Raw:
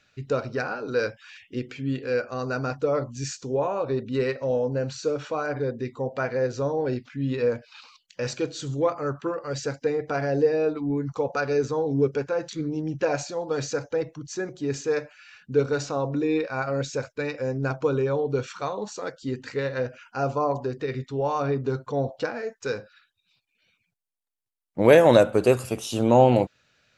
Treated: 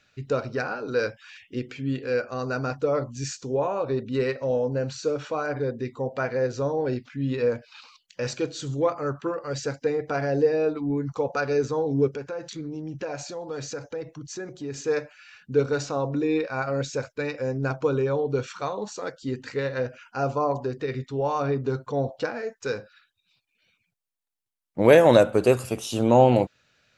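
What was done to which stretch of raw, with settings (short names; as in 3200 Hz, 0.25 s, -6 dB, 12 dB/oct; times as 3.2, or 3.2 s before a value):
12.08–14.78 compressor 2:1, threshold -34 dBFS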